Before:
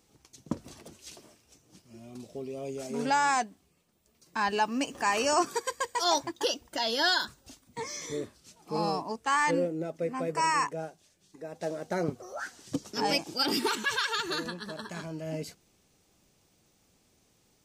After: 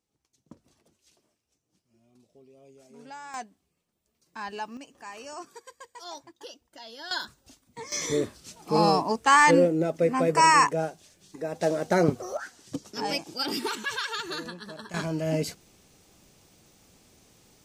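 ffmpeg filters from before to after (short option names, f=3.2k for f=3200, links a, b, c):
-af "asetnsamples=n=441:p=0,asendcmd='3.34 volume volume -8dB;4.77 volume volume -15dB;7.11 volume volume -3.5dB;7.92 volume volume 8.5dB;12.37 volume volume -2dB;14.94 volume volume 8.5dB',volume=-17dB"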